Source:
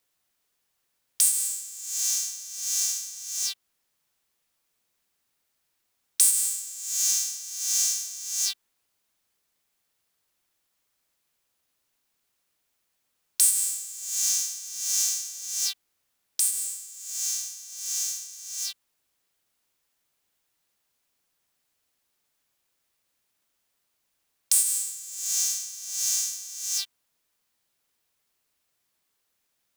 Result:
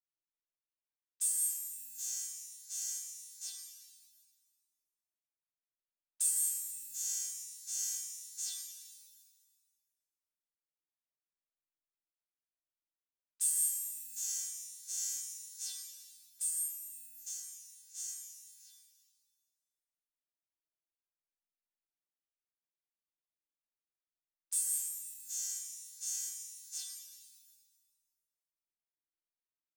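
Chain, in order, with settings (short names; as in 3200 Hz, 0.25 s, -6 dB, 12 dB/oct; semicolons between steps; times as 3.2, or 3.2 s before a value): dynamic EQ 7200 Hz, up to +5 dB, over -36 dBFS, Q 2.7; low-pass opened by the level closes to 1600 Hz, open at -22 dBFS; 16.53–17.26 high shelf 5600 Hz -5.5 dB; resonator 320 Hz, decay 0.65 s, mix 90%; gate -43 dBFS, range -14 dB; shimmer reverb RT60 1.6 s, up +7 st, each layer -8 dB, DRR 1 dB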